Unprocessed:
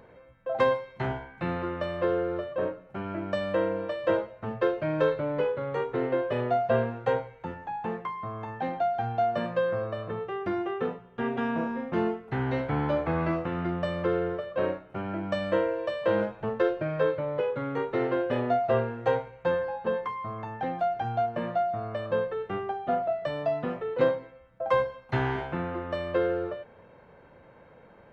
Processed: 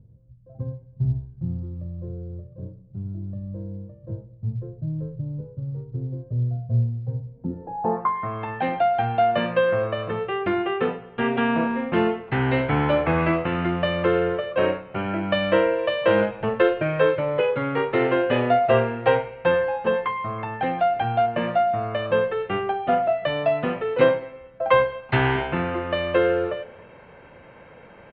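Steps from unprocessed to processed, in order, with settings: on a send: darkening echo 0.107 s, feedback 53%, low-pass 2900 Hz, level -20 dB; on the sum: low-pass sweep 120 Hz -> 2800 Hz, 7.21–8.35; short-mantissa float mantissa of 6-bit; downsampling 11025 Hz; gain +6 dB

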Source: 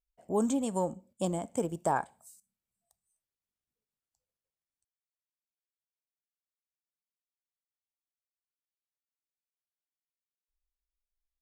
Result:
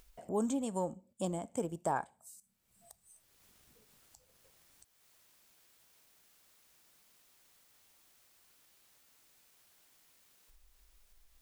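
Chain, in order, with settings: upward compressor, threshold -35 dBFS; gain -4.5 dB

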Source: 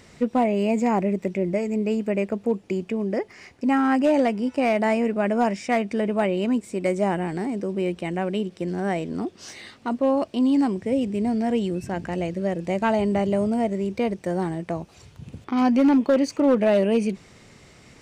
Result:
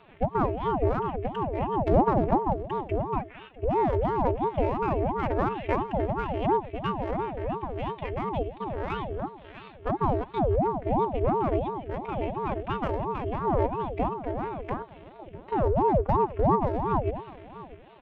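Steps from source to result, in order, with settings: steep low-pass 3300 Hz 72 dB/oct; 1.87–2.39 sample leveller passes 5; notches 50/100/150/200 Hz; treble ducked by the level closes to 620 Hz, closed at -14.5 dBFS; in parallel at -5 dB: soft clip -26 dBFS, distortion -7 dB; on the sum: rotary speaker horn 6 Hz, later 0.85 Hz, at 2.63; robotiser 245 Hz; echo 0.649 s -18.5 dB; on a send at -19 dB: reverb, pre-delay 47 ms; on the sum: ring modulator with a swept carrier 420 Hz, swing 65%, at 2.9 Hz

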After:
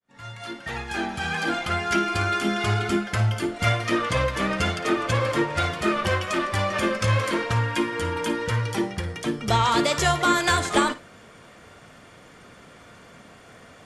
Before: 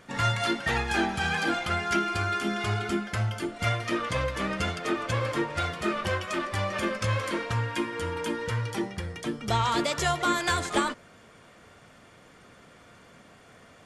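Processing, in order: opening faded in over 2.30 s; flutter echo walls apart 9.4 m, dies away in 0.23 s; gain +5 dB

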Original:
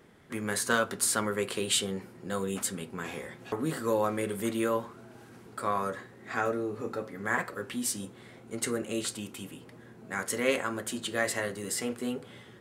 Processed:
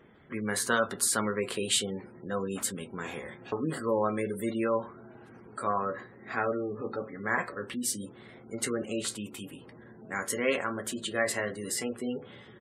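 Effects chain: early reflections 14 ms -14 dB, 28 ms -15.5 dB; spectral gate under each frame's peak -25 dB strong

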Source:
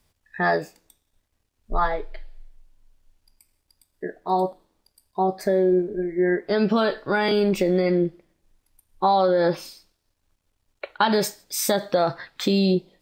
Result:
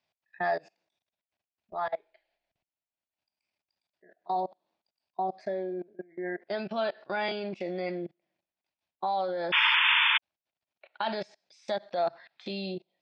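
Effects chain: level quantiser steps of 24 dB; painted sound noise, 9.52–10.18, 850–3600 Hz -19 dBFS; speaker cabinet 240–5200 Hz, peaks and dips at 280 Hz -9 dB, 450 Hz -8 dB, 680 Hz +7 dB, 1200 Hz -4 dB, 2500 Hz +5 dB; gain -5.5 dB

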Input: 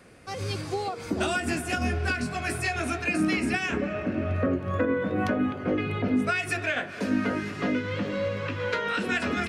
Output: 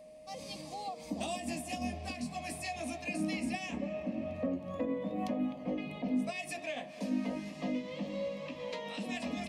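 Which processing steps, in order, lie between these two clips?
fixed phaser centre 390 Hz, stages 6; whine 620 Hz -44 dBFS; gain -6.5 dB

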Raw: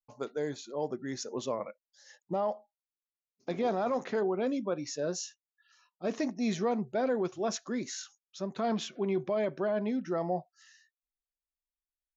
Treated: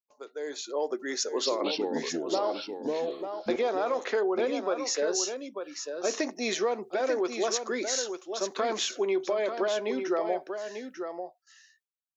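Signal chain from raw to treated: HPF 360 Hz 24 dB/oct; compressor 4:1, threshold -33 dBFS, peak gain reduction 6.5 dB; 1.16–3.56 echoes that change speed 0.239 s, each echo -4 st, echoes 2; AGC gain up to 16 dB; gate with hold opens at -43 dBFS; bell 720 Hz -4 dB 1 oct; echo 0.893 s -7.5 dB; gain -6 dB

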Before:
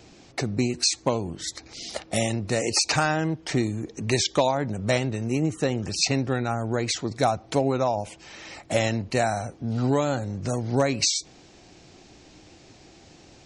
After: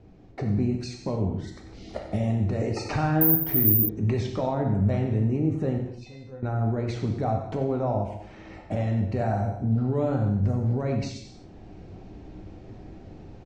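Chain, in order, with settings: LPF 1700 Hz 6 dB/oct; tilt -3 dB/oct; AGC gain up to 8 dB; limiter -10 dBFS, peak gain reduction 8.5 dB; 5.78–6.43 resonator 510 Hz, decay 0.23 s, harmonics all, mix 90%; echo 93 ms -12.5 dB; non-linear reverb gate 0.29 s falling, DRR 2 dB; 3.21–3.89 careless resampling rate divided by 3×, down filtered, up zero stuff; gain -8.5 dB

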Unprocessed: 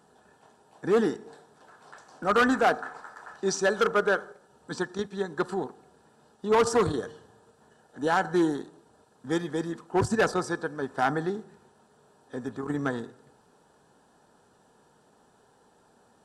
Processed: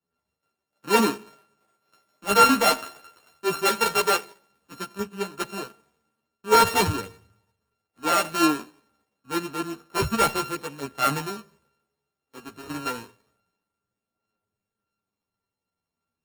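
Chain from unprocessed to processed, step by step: sample sorter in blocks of 32 samples; chorus voices 2, 0.14 Hz, delay 12 ms, depth 2.7 ms; three-band expander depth 70%; gain +2.5 dB

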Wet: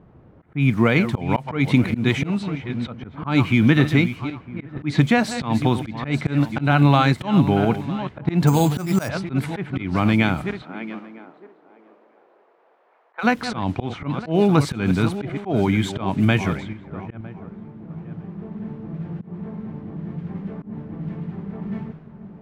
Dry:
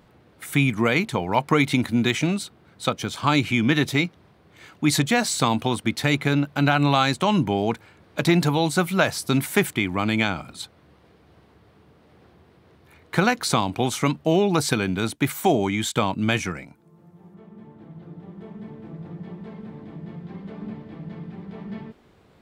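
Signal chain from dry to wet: regenerating reverse delay 0.478 s, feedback 44%, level -11.5 dB; in parallel at -8 dB: requantised 6-bit, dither triangular; on the sum: auto swell 0.158 s; tone controls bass +6 dB, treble -12 dB; low-pass opened by the level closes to 690 Hz, open at -15.5 dBFS; 8.47–9.09 careless resampling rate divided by 6×, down none, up hold; 10.62–13.23 HPF 190 Hz -> 690 Hz 24 dB/oct; gain -1 dB

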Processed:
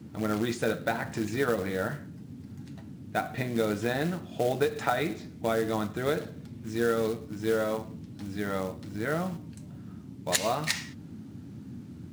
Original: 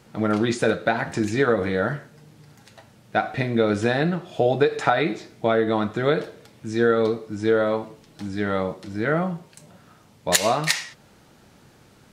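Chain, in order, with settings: short-mantissa float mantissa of 2-bit; band noise 84–280 Hz -36 dBFS; gain -7.5 dB

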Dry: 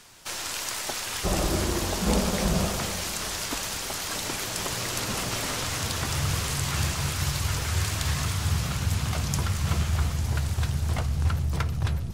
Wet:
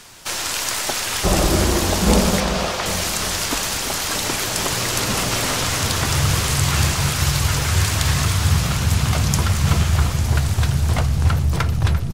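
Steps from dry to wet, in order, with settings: 2.4–2.86 three-band isolator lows -13 dB, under 440 Hz, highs -12 dB, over 5700 Hz; outdoor echo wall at 59 m, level -11 dB; gain +8.5 dB

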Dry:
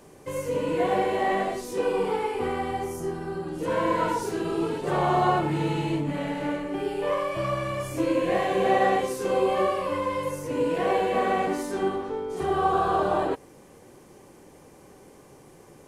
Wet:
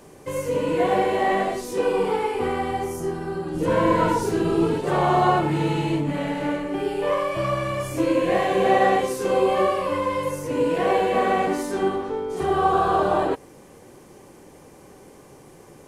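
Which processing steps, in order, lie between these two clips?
3.54–4.81 low shelf 270 Hz +8 dB; gain +3.5 dB

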